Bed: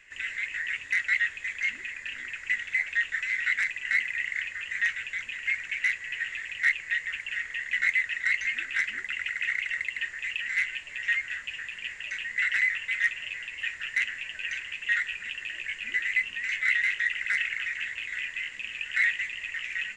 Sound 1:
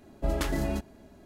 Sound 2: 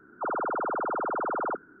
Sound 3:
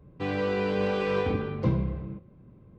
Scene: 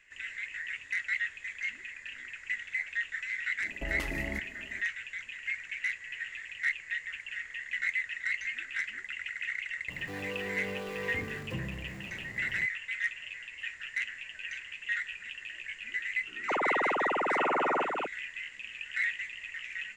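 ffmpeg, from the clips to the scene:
-filter_complex "[0:a]volume=-6.5dB[a];[1:a]acompressor=threshold=-32dB:ratio=6:attack=3.2:release=140:knee=1:detection=peak[b];[3:a]aeval=exprs='val(0)+0.5*0.0355*sgn(val(0))':c=same[c];[2:a]aecho=1:1:889:0.668[d];[b]atrim=end=1.25,asetpts=PTS-STARTPTS,volume=-1dB,afade=t=in:d=0.05,afade=t=out:st=1.2:d=0.05,adelay=3590[e];[c]atrim=end=2.78,asetpts=PTS-STARTPTS,volume=-14dB,afade=t=in:d=0.004:c=hsin,afade=t=out:st=2.776:d=0.004:c=hsin,adelay=9880[f];[d]atrim=end=1.8,asetpts=PTS-STARTPTS,volume=-0.5dB,afade=t=in:d=0.004:c=hsin,afade=t=out:st=1.796:d=0.004:c=hsin,adelay=16270[g];[a][e][f][g]amix=inputs=4:normalize=0"

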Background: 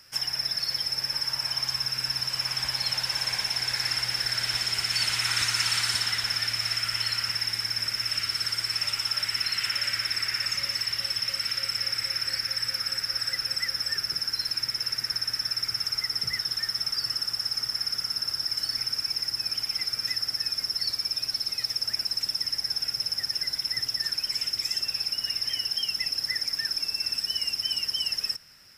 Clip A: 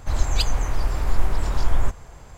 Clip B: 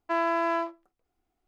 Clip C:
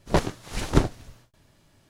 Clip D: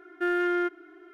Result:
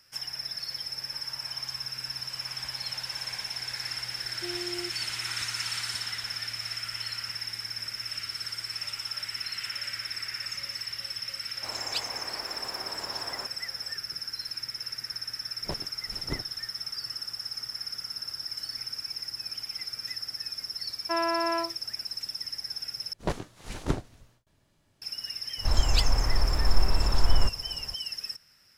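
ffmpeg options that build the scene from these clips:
-filter_complex "[1:a]asplit=2[a][b];[3:a]asplit=2[c][d];[0:a]volume=-7dB[e];[4:a]aecho=1:1:3.2:0.95[f];[a]highpass=370[g];[e]asplit=2[h][i];[h]atrim=end=23.134[j];[d]atrim=end=1.89,asetpts=PTS-STARTPTS,volume=-8.5dB[k];[i]atrim=start=25.016[l];[f]atrim=end=1.13,asetpts=PTS-STARTPTS,volume=-16dB,afade=t=in:d=0.004:c=hsin,afade=t=out:st=1.126:d=0.004:c=hsin,adelay=185661S[m];[g]atrim=end=2.37,asetpts=PTS-STARTPTS,volume=-6dB,afade=t=in:d=0.004:c=hsin,afade=t=out:st=2.366:d=0.004:c=hsin,adelay=11560[n];[c]atrim=end=1.89,asetpts=PTS-STARTPTS,volume=-15.5dB,afade=t=in:d=0.004:c=hsin,afade=t=out:st=1.886:d=0.004:c=hsin,adelay=15550[o];[2:a]atrim=end=1.47,asetpts=PTS-STARTPTS,volume=-1.5dB,afade=t=in:d=0.004:c=hsin,afade=t=out:st=1.466:d=0.004:c=hsin,adelay=926100S[p];[b]atrim=end=2.37,asetpts=PTS-STARTPTS,volume=-2dB,afade=t=in:d=0.004:c=hsin,afade=t=out:st=2.366:d=0.004:c=hsin,adelay=25580[q];[j][k]acrossfade=d=0.004:c1=hsin:c2=hsin[r];[r][l]acrossfade=d=0.004:c1=hsin:c2=hsin[s];[s][m][n][o][p][q]amix=inputs=6:normalize=0"

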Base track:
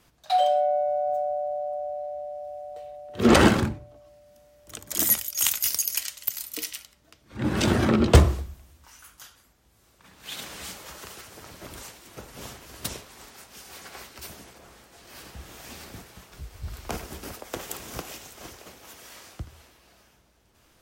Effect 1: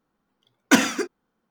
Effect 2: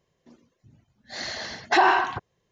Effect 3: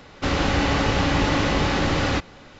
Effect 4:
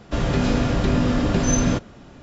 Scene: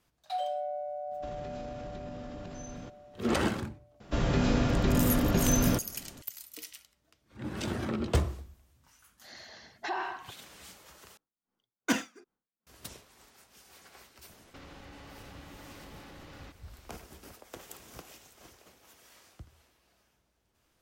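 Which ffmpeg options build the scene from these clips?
-filter_complex "[4:a]asplit=2[a][b];[0:a]volume=-12dB[c];[a]acompressor=threshold=-23dB:ratio=6:attack=3.2:release=140:knee=1:detection=peak[d];[1:a]aeval=exprs='val(0)*pow(10,-21*(0.5-0.5*cos(2*PI*2.6*n/s))/20)':c=same[e];[3:a]acompressor=threshold=-29dB:ratio=6:attack=3.2:release=140:knee=1:detection=peak[f];[c]asplit=2[g][h];[g]atrim=end=11.174[i];[e]atrim=end=1.5,asetpts=PTS-STARTPTS,volume=-10.5dB[j];[h]atrim=start=12.666[k];[d]atrim=end=2.22,asetpts=PTS-STARTPTS,volume=-16.5dB,afade=t=in:d=0.004:c=hsin,afade=t=out:st=2.216:d=0.004:c=hsin,adelay=1110[l];[b]atrim=end=2.22,asetpts=PTS-STARTPTS,volume=-6dB,afade=t=in:d=0.004:c=hsin,afade=t=out:st=2.216:d=0.004:c=hsin,adelay=4000[m];[2:a]atrim=end=2.51,asetpts=PTS-STARTPTS,volume=-16dB,afade=t=in:d=0.004:c=hsin,afade=t=out:st=2.506:d=0.004:c=hsin,adelay=8120[n];[f]atrim=end=2.59,asetpts=PTS-STARTPTS,volume=-17.5dB,afade=t=in:d=0.004:c=hsin,afade=t=out:st=2.586:d=0.004:c=hsin,adelay=14320[o];[i][j]acrossfade=d=0.004:c1=hsin:c2=hsin[p];[p][k]acrossfade=d=0.004:c1=hsin:c2=hsin[q];[q][l][m][n][o]amix=inputs=5:normalize=0"

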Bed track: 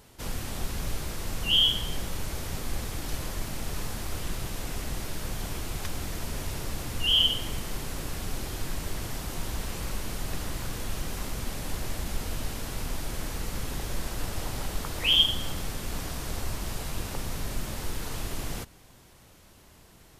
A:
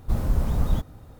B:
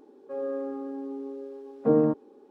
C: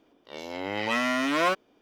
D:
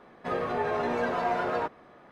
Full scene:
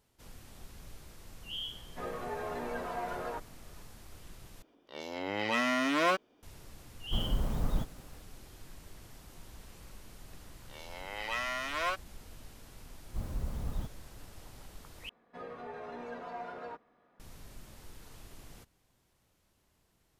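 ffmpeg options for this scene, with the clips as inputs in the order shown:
-filter_complex "[4:a]asplit=2[a][b];[3:a]asplit=2[c][d];[1:a]asplit=2[e][f];[0:a]volume=-18dB[g];[e]equalizer=f=76:w=1.5:g=-8.5[h];[d]highpass=680[i];[b]aecho=1:1:4.2:0.3[j];[g]asplit=3[k][l][m];[k]atrim=end=4.624[n];[c]atrim=end=1.81,asetpts=PTS-STARTPTS,volume=-3.5dB[o];[l]atrim=start=6.426:end=15.094[p];[j]atrim=end=2.11,asetpts=PTS-STARTPTS,volume=-15.5dB[q];[m]atrim=start=17.196[r];[a]atrim=end=2.11,asetpts=PTS-STARTPTS,volume=-9.5dB,afade=t=in:d=0.004:c=hsin,afade=t=out:st=2.106:d=0.004:c=hsin,adelay=1720[s];[h]atrim=end=1.19,asetpts=PTS-STARTPTS,volume=-6dB,afade=t=in:d=0.004:c=hsin,afade=t=out:st=1.186:d=0.004:c=hsin,adelay=7030[t];[i]atrim=end=1.81,asetpts=PTS-STARTPTS,volume=-7dB,afade=t=in:d=0.004:c=hsin,afade=t=out:st=1.806:d=0.004:c=hsin,adelay=10410[u];[f]atrim=end=1.19,asetpts=PTS-STARTPTS,volume=-13.5dB,afade=t=in:d=0.004:c=hsin,afade=t=out:st=1.186:d=0.004:c=hsin,adelay=13060[v];[n][o]acrossfade=d=0.004:c1=hsin:c2=hsin[w];[w][p]acrossfade=d=0.004:c1=hsin:c2=hsin[x];[x][q]acrossfade=d=0.004:c1=hsin:c2=hsin[y];[y][r]acrossfade=d=0.004:c1=hsin:c2=hsin[z];[z][s][t][u][v]amix=inputs=5:normalize=0"

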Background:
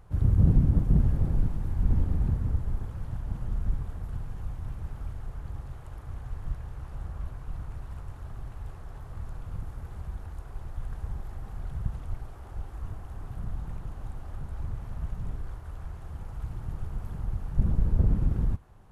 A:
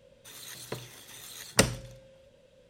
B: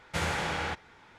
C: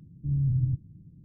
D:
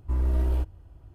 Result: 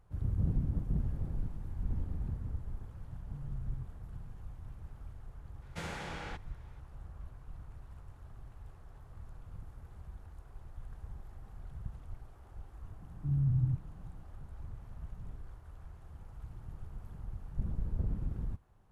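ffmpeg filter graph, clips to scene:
-filter_complex "[3:a]asplit=2[a][b];[0:a]volume=-11dB[c];[a]acompressor=threshold=-36dB:ratio=6:attack=3.2:release=140:knee=1:detection=peak[d];[2:a]equalizer=f=190:w=0.61:g=5[e];[d]atrim=end=1.24,asetpts=PTS-STARTPTS,volume=-8dB,afade=t=in:d=0.004:c=hsin,afade=t=out:st=1.236:d=0.004:c=hsin,adelay=136269S[f];[e]atrim=end=1.18,asetpts=PTS-STARTPTS,volume=-12dB,afade=t=in:d=0.004:c=hsin,afade=t=out:st=1.176:d=0.004:c=hsin,adelay=5620[g];[b]atrim=end=1.24,asetpts=PTS-STARTPTS,volume=-4dB,afade=t=in:d=0.004:c=hsin,afade=t=out:st=1.236:d=0.004:c=hsin,adelay=573300S[h];[c][f][g][h]amix=inputs=4:normalize=0"

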